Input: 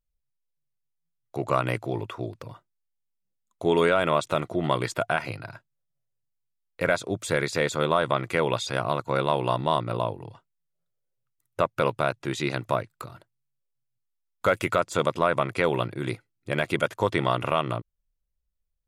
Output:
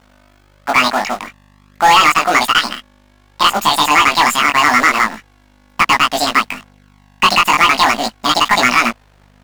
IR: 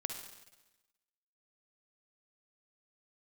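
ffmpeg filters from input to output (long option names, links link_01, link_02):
-filter_complex "[0:a]equalizer=frequency=260:width_type=o:width=0.85:gain=-2.5,asetrate=88200,aresample=44100,asplit=2[link_01][link_02];[link_02]acrusher=bits=6:dc=4:mix=0:aa=0.000001,volume=-7dB[link_03];[link_01][link_03]amix=inputs=2:normalize=0,asubboost=boost=7:cutoff=130,aeval=exprs='val(0)+0.00316*(sin(2*PI*50*n/s)+sin(2*PI*2*50*n/s)/2+sin(2*PI*3*50*n/s)/3+sin(2*PI*4*50*n/s)/4+sin(2*PI*5*50*n/s)/5)':channel_layout=same,acrusher=bits=3:mode=log:mix=0:aa=0.000001,flanger=delay=16.5:depth=4.6:speed=0.35,asplit=2[link_04][link_05];[link_05]highpass=frequency=720:poles=1,volume=22dB,asoftclip=type=tanh:threshold=-0.5dB[link_06];[link_04][link_06]amix=inputs=2:normalize=0,lowpass=frequency=4300:poles=1,volume=-6dB,volume=2.5dB"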